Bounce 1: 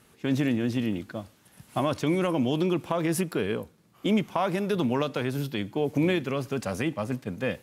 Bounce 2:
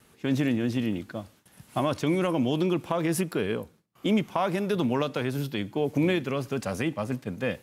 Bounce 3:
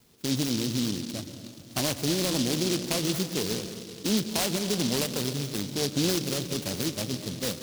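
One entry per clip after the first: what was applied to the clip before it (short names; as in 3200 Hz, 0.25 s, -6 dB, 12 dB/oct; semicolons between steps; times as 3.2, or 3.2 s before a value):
gate with hold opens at -49 dBFS
reverb RT60 2.4 s, pre-delay 0.112 s, DRR 9.5 dB; noise-modulated delay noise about 4300 Hz, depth 0.25 ms; gain -2 dB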